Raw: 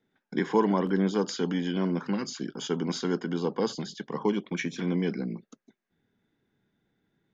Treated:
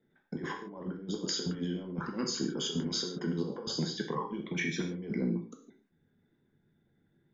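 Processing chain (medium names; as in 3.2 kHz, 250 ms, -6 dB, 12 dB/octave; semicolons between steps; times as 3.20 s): resonances exaggerated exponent 1.5; compressor with a negative ratio -32 dBFS, ratio -0.5; gated-style reverb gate 180 ms falling, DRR 1.5 dB; trim -3.5 dB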